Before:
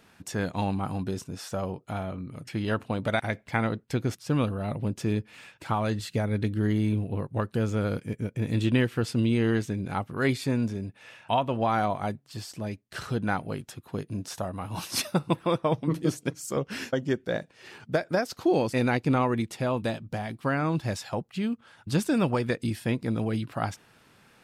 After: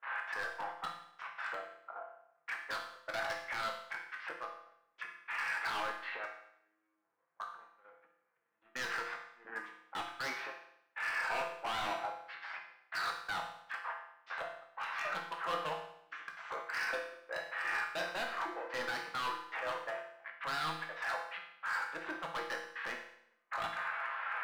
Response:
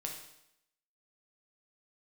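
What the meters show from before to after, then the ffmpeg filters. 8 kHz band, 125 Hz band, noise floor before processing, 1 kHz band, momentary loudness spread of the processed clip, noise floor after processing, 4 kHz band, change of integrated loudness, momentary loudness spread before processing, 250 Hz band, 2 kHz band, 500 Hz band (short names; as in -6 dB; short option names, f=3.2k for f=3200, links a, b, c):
-13.5 dB, -33.0 dB, -60 dBFS, -6.5 dB, 11 LU, -79 dBFS, -6.0 dB, -10.5 dB, 10 LU, -28.5 dB, -1.0 dB, -15.0 dB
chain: -filter_complex "[0:a]aeval=exprs='val(0)+0.5*0.0631*sgn(val(0))':c=same,highpass=1.3k,agate=range=-29dB:threshold=-31dB:ratio=16:detection=peak,afwtdn=0.00708,lowpass=f=1.7k:w=0.5412,lowpass=f=1.7k:w=1.3066,asplit=2[a][b];[b]acompressor=threshold=-49dB:ratio=5,volume=-3dB[c];[a][c]amix=inputs=2:normalize=0,alimiter=level_in=1.5dB:limit=-24dB:level=0:latency=1:release=13,volume=-1.5dB,aeval=exprs='0.0251*(abs(mod(val(0)/0.0251+3,4)-2)-1)':c=same[d];[1:a]atrim=start_sample=2205,asetrate=48510,aresample=44100[e];[d][e]afir=irnorm=-1:irlink=0,volume=3.5dB"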